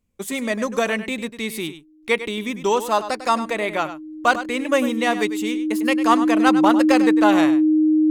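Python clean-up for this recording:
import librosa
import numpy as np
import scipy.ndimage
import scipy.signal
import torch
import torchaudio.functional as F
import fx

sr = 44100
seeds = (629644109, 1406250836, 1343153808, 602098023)

y = fx.fix_declip(x, sr, threshold_db=-6.0)
y = fx.notch(y, sr, hz=310.0, q=30.0)
y = fx.fix_echo_inverse(y, sr, delay_ms=100, level_db=-12.5)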